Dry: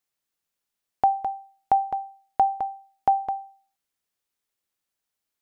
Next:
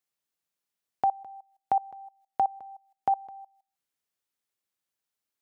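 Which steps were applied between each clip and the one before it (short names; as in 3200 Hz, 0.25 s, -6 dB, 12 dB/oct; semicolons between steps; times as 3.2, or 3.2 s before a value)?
HPF 70 Hz 24 dB/oct; level quantiser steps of 22 dB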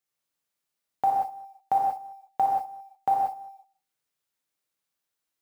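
short-mantissa float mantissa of 4-bit; non-linear reverb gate 0.21 s flat, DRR -3 dB; gain -1.5 dB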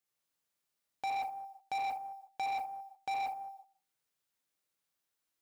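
soft clip -31.5 dBFS, distortion -6 dB; gain -1.5 dB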